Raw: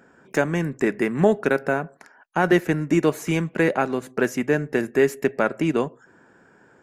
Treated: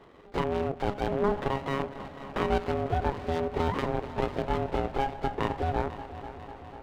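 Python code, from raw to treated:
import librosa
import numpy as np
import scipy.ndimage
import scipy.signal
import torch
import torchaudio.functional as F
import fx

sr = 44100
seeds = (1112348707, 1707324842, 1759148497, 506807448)

p1 = fx.high_shelf(x, sr, hz=2800.0, db=-2.0)
p2 = fx.over_compress(p1, sr, threshold_db=-29.0, ratio=-1.0)
p3 = p1 + (p2 * 10.0 ** (0.0 / 20.0))
p4 = fx.lpc_vocoder(p3, sr, seeds[0], excitation='pitch_kept', order=8)
p5 = p4 * np.sin(2.0 * np.pi * 410.0 * np.arange(len(p4)) / sr)
p6 = p5 + fx.echo_heads(p5, sr, ms=248, heads='first and second', feedback_pct=70, wet_db=-17.0, dry=0)
p7 = fx.running_max(p6, sr, window=9)
y = p7 * 10.0 ** (-6.5 / 20.0)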